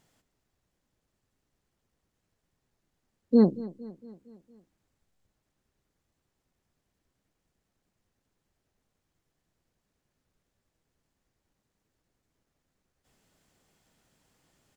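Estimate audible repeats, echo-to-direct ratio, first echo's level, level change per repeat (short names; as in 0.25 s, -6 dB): 4, -17.0 dB, -18.5 dB, -5.0 dB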